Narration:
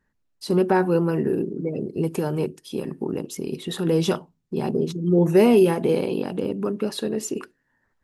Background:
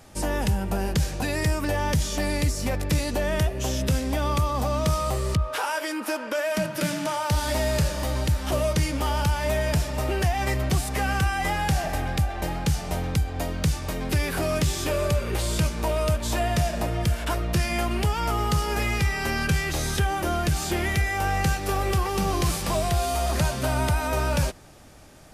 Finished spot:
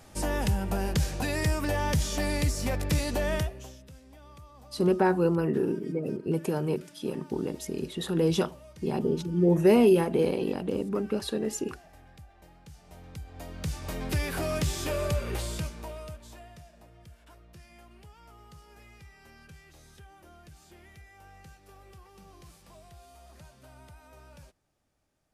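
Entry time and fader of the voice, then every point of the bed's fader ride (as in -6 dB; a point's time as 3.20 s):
4.30 s, -4.0 dB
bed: 3.35 s -3 dB
3.84 s -26.5 dB
12.67 s -26.5 dB
13.95 s -5 dB
15.31 s -5 dB
16.66 s -28 dB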